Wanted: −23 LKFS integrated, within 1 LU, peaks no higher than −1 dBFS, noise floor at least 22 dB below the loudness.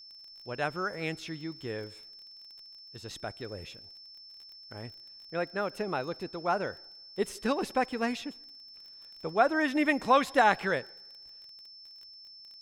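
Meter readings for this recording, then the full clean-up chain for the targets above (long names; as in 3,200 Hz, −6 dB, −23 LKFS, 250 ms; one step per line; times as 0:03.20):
crackle rate 24 per second; interfering tone 5,300 Hz; level of the tone −48 dBFS; integrated loudness −30.5 LKFS; sample peak −11.5 dBFS; target loudness −23.0 LKFS
→ click removal
notch filter 5,300 Hz, Q 30
level +7.5 dB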